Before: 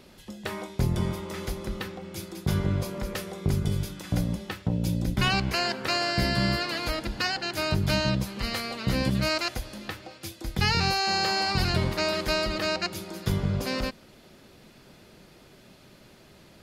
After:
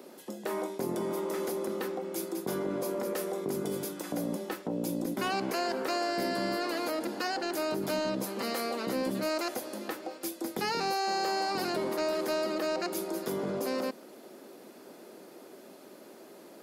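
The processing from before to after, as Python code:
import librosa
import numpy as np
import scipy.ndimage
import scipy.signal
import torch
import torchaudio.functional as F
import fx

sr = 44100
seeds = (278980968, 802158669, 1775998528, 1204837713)

p1 = scipy.signal.sosfilt(scipy.signal.butter(4, 280.0, 'highpass', fs=sr, output='sos'), x)
p2 = fx.peak_eq(p1, sr, hz=3100.0, db=-14.0, octaves=2.7)
p3 = fx.over_compress(p2, sr, threshold_db=-41.0, ratio=-1.0)
p4 = p2 + (p3 * 10.0 ** (-2.0 / 20.0))
p5 = 10.0 ** (-22.5 / 20.0) * np.tanh(p4 / 10.0 ** (-22.5 / 20.0))
y = p5 * 10.0 ** (1.5 / 20.0)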